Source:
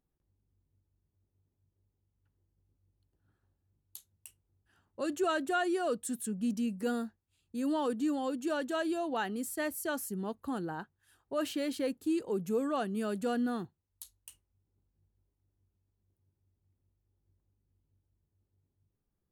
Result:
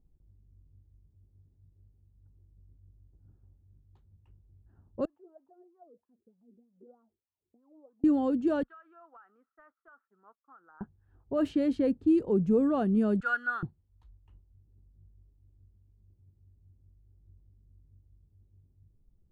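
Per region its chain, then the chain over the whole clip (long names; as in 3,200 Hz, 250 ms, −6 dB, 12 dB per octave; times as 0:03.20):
0:05.05–0:08.04: downward compressor, threshold −46 dBFS + LFO wah 3.2 Hz 370–1,100 Hz, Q 9.2
0:08.63–0:10.81: downward expander −38 dBFS + four-pole ladder band-pass 1,400 Hz, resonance 80% + downward compressor 10 to 1, threshold −47 dBFS
0:13.20–0:13.63: floating-point word with a short mantissa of 6 bits + high-pass with resonance 1,400 Hz, resonance Q 13
whole clip: low-pass that shuts in the quiet parts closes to 980 Hz, open at −29 dBFS; spectral tilt −4.5 dB per octave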